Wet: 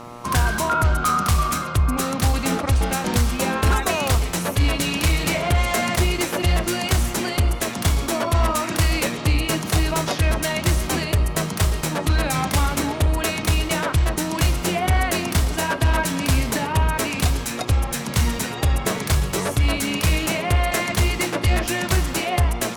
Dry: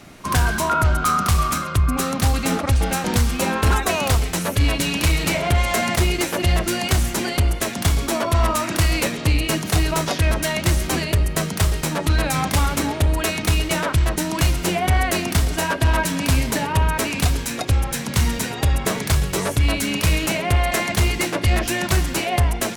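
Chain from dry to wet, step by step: buzz 120 Hz, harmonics 11, -38 dBFS 0 dB/oct; gain -1 dB

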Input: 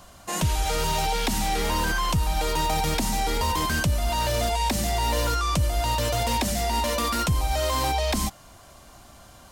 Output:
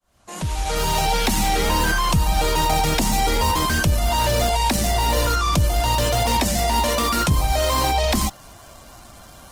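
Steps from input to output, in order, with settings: opening faded in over 1.80 s; vocal rider within 5 dB 0.5 s; gain +5.5 dB; Opus 16 kbps 48000 Hz

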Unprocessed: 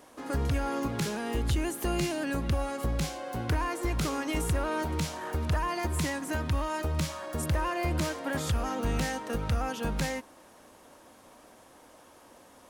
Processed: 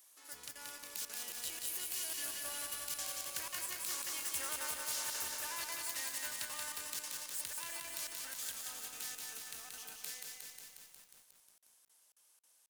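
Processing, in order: self-modulated delay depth 0.056 ms; Doppler pass-by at 4.19, 13 m/s, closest 4 m; differentiator; reverse; compressor 20:1, threshold -59 dBFS, peak gain reduction 25 dB; reverse; high shelf 2200 Hz +6 dB; feedback echo 0.213 s, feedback 50%, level -9 dB; crackling interface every 0.27 s, samples 2048, zero, from 0.51; lo-fi delay 0.18 s, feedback 80%, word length 13-bit, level -3 dB; gain +16.5 dB

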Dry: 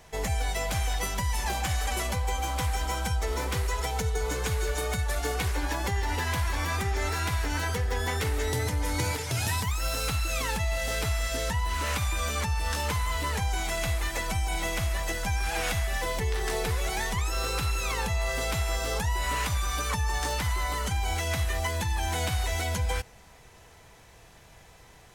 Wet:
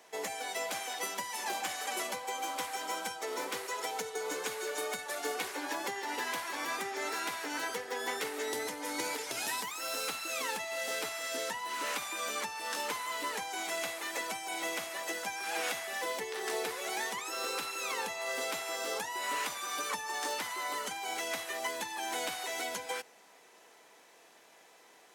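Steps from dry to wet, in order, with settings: HPF 270 Hz 24 dB/oct; gain -4 dB

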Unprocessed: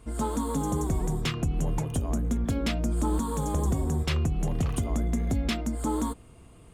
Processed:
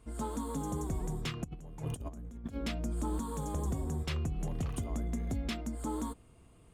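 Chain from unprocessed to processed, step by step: 1.44–2.56 negative-ratio compressor -32 dBFS, ratio -0.5; gain -8 dB

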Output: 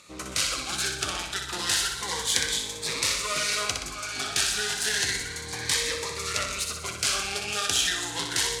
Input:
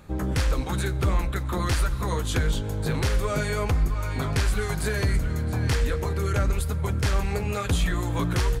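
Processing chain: self-modulated delay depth 0.21 ms; weighting filter ITU-R 468; flutter echo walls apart 10.6 m, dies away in 0.65 s; on a send at -14 dB: reverb RT60 0.70 s, pre-delay 3 ms; on the sum: cascading phaser rising 0.31 Hz

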